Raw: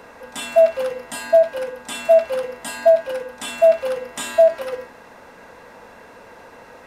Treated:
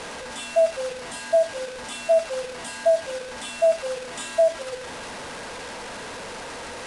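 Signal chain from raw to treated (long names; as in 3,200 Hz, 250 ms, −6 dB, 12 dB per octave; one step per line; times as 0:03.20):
linear delta modulator 64 kbit/s, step −24 dBFS
elliptic low-pass filter 10,000 Hz, stop band 60 dB
level −5 dB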